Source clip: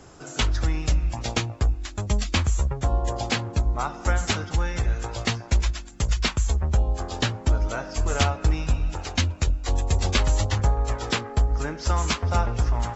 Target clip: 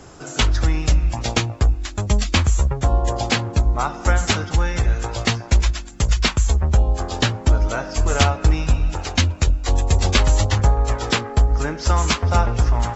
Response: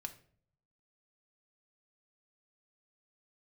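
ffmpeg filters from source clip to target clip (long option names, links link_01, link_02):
-af "volume=5.5dB"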